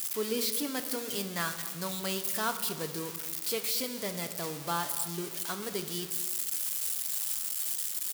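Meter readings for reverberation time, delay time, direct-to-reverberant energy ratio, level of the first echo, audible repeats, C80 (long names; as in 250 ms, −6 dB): 1.5 s, 227 ms, 7.5 dB, −17.5 dB, 1, 11.5 dB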